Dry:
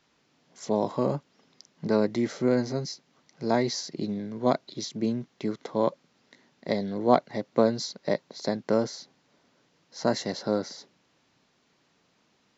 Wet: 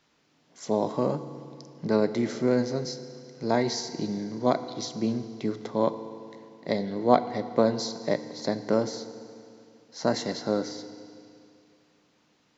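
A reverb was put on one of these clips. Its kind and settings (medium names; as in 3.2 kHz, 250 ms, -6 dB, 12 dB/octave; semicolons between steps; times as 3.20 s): FDN reverb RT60 2.5 s, low-frequency decay 1.1×, high-frequency decay 0.95×, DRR 10.5 dB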